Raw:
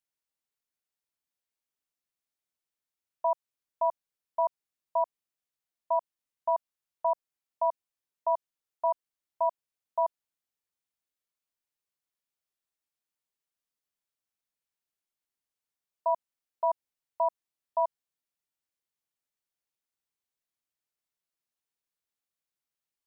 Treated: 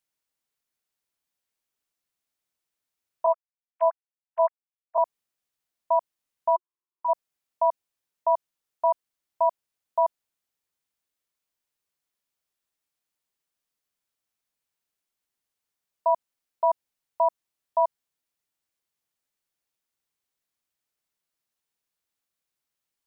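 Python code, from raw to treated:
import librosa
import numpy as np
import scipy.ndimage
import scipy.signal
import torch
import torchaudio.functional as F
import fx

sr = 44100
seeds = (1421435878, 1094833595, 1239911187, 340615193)

y = fx.sine_speech(x, sr, at=(3.26, 4.98))
y = fx.double_bandpass(y, sr, hz=610.0, octaves=1.5, at=(6.55, 7.08), fade=0.02)
y = y * 10.0 ** (5.0 / 20.0)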